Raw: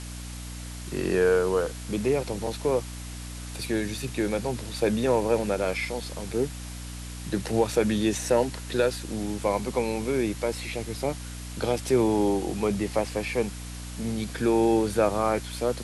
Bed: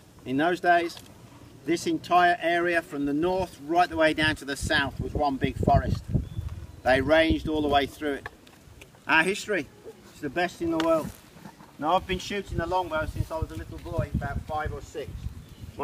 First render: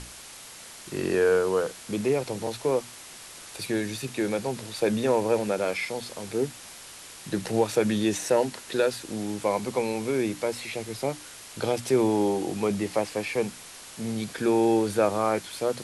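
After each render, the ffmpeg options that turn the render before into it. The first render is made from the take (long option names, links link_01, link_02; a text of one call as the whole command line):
ffmpeg -i in.wav -af "bandreject=frequency=60:width_type=h:width=6,bandreject=frequency=120:width_type=h:width=6,bandreject=frequency=180:width_type=h:width=6,bandreject=frequency=240:width_type=h:width=6,bandreject=frequency=300:width_type=h:width=6" out.wav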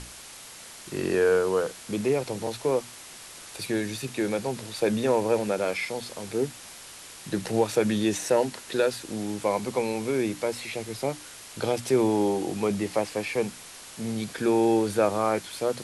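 ffmpeg -i in.wav -af anull out.wav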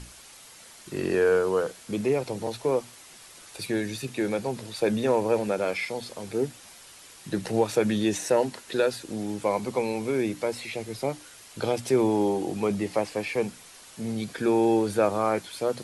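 ffmpeg -i in.wav -af "afftdn=noise_reduction=6:noise_floor=-45" out.wav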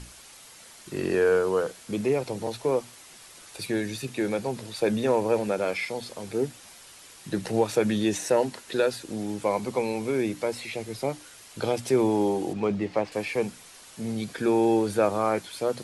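ffmpeg -i in.wav -filter_complex "[0:a]asettb=1/sr,asplit=3[link_01][link_02][link_03];[link_01]atrim=end=12.534[link_04];[link_02]atrim=start=12.53:end=13.12,asetpts=PTS-STARTPTS,afade=type=in:duration=0.004:curve=qsin,afade=type=out:start_time=0.586:duration=0.004:curve=qsin,adynamicsmooth=sensitivity=3.5:basefreq=3900[link_05];[link_03]atrim=start=13.116[link_06];[link_04][link_05]acrossfade=duration=0.004:curve1=hsin:curve2=qsin[link_07];[link_07][link_06]acrossfade=duration=0.004:curve1=qsin:curve2=hsin" out.wav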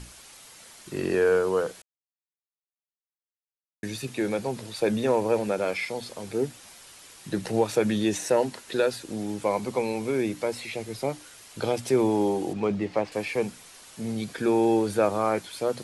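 ffmpeg -i in.wav -filter_complex "[0:a]asplit=3[link_01][link_02][link_03];[link_01]atrim=end=1.82,asetpts=PTS-STARTPTS,afade=type=out:start_time=1.816:duration=0.004:curve=hsin[link_04];[link_02]atrim=start=1.82:end=3.83,asetpts=PTS-STARTPTS,volume=0[link_05];[link_03]atrim=start=3.83,asetpts=PTS-STARTPTS,afade=type=in:duration=0.004:curve=hsin[link_06];[link_04][link_05][link_06]concat=n=3:v=0:a=1" out.wav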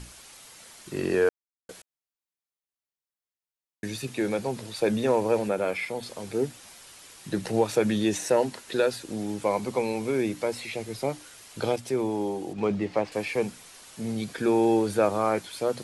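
ffmpeg -i in.wav -filter_complex "[0:a]asettb=1/sr,asplit=3[link_01][link_02][link_03];[link_01]atrim=end=5.484[link_04];[link_02]atrim=start=5.48:end=6.03,asetpts=PTS-STARTPTS,afade=type=in:duration=0.004:curve=qsin,afade=type=out:start_time=0.546:duration=0.004:curve=qsin,equalizer=frequency=5200:width_type=o:width=1:gain=-7[link_05];[link_03]atrim=start=6.026[link_06];[link_04][link_05]acrossfade=duration=0.004:curve1=hsin:curve2=qsin[link_07];[link_07][link_06]acrossfade=duration=0.004:curve1=qsin:curve2=hsin,asplit=5[link_08][link_09][link_10][link_11][link_12];[link_08]atrim=end=1.29,asetpts=PTS-STARTPTS,afade=type=out:start_time=1.286:duration=0.004:curve=hsin[link_13];[link_09]atrim=start=1.29:end=1.69,asetpts=PTS-STARTPTS,volume=0[link_14];[link_10]atrim=start=1.69:end=11.762,asetpts=PTS-STARTPTS,afade=type=in:duration=0.004:curve=hsin[link_15];[link_11]atrim=start=11.758:end=12.582,asetpts=PTS-STARTPTS,volume=-5dB[link_16];[link_12]atrim=start=12.578[link_17];[link_13][link_14][link_15]concat=n=3:v=0:a=1[link_18];[link_18][link_16]acrossfade=duration=0.004:curve1=hsin:curve2=hsin[link_19];[link_19][link_17]acrossfade=duration=0.004:curve1=hsin:curve2=hsin" out.wav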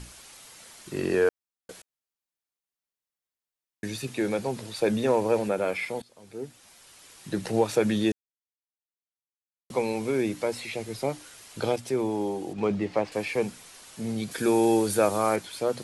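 ffmpeg -i in.wav -filter_complex "[0:a]asettb=1/sr,asplit=3[link_01][link_02][link_03];[link_01]atrim=end=14.314[link_04];[link_02]atrim=start=14.31:end=15.36,asetpts=PTS-STARTPTS,afade=type=in:duration=0.004:curve=qsin,afade=type=out:start_time=1.046:duration=0.004:curve=qsin,aemphasis=mode=production:type=50kf[link_05];[link_03]atrim=start=15.356[link_06];[link_04][link_05]acrossfade=duration=0.004:curve1=hsin:curve2=qsin[link_07];[link_07][link_06]acrossfade=duration=0.004:curve1=qsin:curve2=hsin,asplit=4[link_08][link_09][link_10][link_11];[link_08]atrim=end=6.02,asetpts=PTS-STARTPTS,afade=type=out:start_time=6.016:duration=0.004:curve=hsin:silence=0.0841395[link_12];[link_09]atrim=start=6.02:end=8.12,asetpts=PTS-STARTPTS,afade=type=in:duration=1.49:silence=0.0841395,afade=type=out:start_time=2.096:duration=0.004:curve=hsin[link_13];[link_10]atrim=start=8.12:end=9.7,asetpts=PTS-STARTPTS,volume=0[link_14];[link_11]atrim=start=9.7,asetpts=PTS-STARTPTS,afade=type=in:duration=0.004:curve=hsin[link_15];[link_12][link_13][link_14][link_15]concat=n=4:v=0:a=1" out.wav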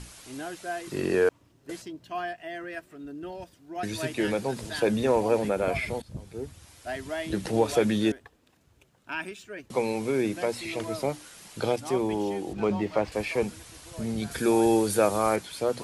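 ffmpeg -i in.wav -i bed.wav -filter_complex "[1:a]volume=-13dB[link_01];[0:a][link_01]amix=inputs=2:normalize=0" out.wav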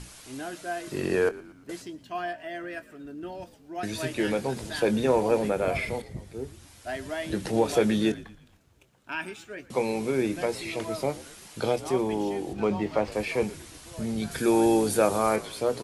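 ffmpeg -i in.wav -filter_complex "[0:a]asplit=2[link_01][link_02];[link_02]adelay=23,volume=-13dB[link_03];[link_01][link_03]amix=inputs=2:normalize=0,asplit=5[link_04][link_05][link_06][link_07][link_08];[link_05]adelay=116,afreqshift=-61,volume=-19dB[link_09];[link_06]adelay=232,afreqshift=-122,volume=-25.4dB[link_10];[link_07]adelay=348,afreqshift=-183,volume=-31.8dB[link_11];[link_08]adelay=464,afreqshift=-244,volume=-38.1dB[link_12];[link_04][link_09][link_10][link_11][link_12]amix=inputs=5:normalize=0" out.wav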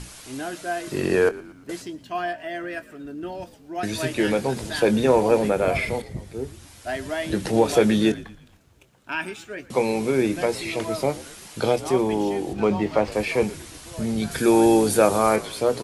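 ffmpeg -i in.wav -af "volume=5dB" out.wav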